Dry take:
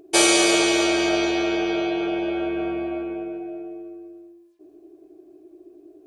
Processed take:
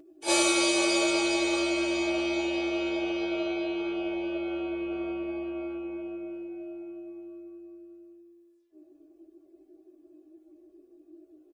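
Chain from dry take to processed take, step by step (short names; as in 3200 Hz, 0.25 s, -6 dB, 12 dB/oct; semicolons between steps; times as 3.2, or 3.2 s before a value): comb 3.5 ms, depth 65%; plain phase-vocoder stretch 1.9×; gain -6.5 dB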